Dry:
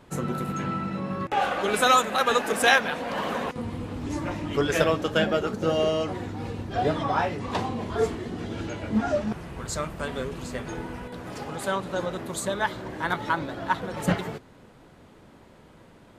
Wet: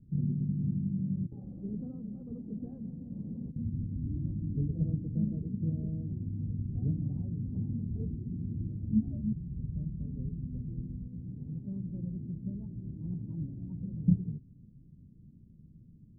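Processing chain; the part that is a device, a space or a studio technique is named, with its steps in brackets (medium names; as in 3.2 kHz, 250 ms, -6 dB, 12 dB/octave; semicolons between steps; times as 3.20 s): the neighbour's flat through the wall (low-pass 210 Hz 24 dB/octave; peaking EQ 140 Hz +3.5 dB 0.64 oct)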